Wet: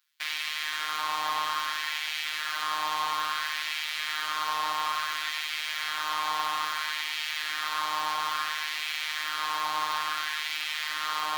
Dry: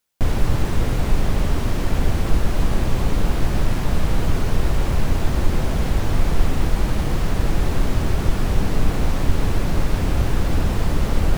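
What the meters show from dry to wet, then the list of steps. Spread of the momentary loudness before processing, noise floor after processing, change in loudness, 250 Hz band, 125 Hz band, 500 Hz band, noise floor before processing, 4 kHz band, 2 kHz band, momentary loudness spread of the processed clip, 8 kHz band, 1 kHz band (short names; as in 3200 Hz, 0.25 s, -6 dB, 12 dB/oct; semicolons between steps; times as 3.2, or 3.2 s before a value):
1 LU, -34 dBFS, -6.5 dB, -30.0 dB, under -40 dB, -20.5 dB, -23 dBFS, +5.5 dB, +3.5 dB, 2 LU, -2.5 dB, +2.5 dB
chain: LFO high-pass sine 0.59 Hz 940–2200 Hz; robotiser 153 Hz; graphic EQ 125/500/1000/4000/8000 Hz -10/-9/+3/+7/-4 dB; FDN reverb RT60 3.2 s, high-frequency decay 0.3×, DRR 6.5 dB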